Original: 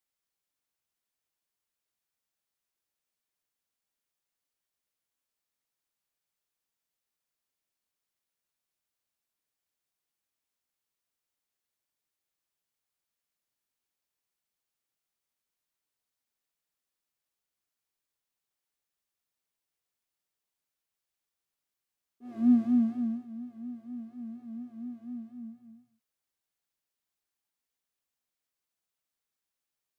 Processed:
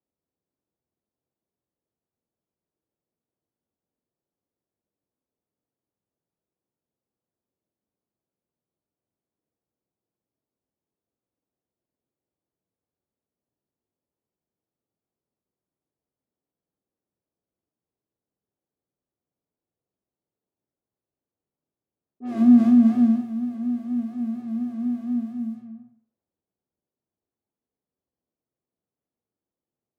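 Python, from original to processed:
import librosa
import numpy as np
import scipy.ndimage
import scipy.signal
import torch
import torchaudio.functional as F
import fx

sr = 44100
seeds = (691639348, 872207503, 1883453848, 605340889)

p1 = scipy.signal.sosfilt(scipy.signal.butter(2, 63.0, 'highpass', fs=sr, output='sos'), x)
p2 = fx.over_compress(p1, sr, threshold_db=-28.0, ratio=-0.5)
p3 = p1 + (p2 * 10.0 ** (-2.5 / 20.0))
p4 = fx.low_shelf(p3, sr, hz=160.0, db=-4.5)
p5 = fx.env_lowpass(p4, sr, base_hz=400.0, full_db=-35.0)
p6 = fx.room_flutter(p5, sr, wall_m=8.5, rt60_s=0.35)
y = p6 * 10.0 ** (7.5 / 20.0)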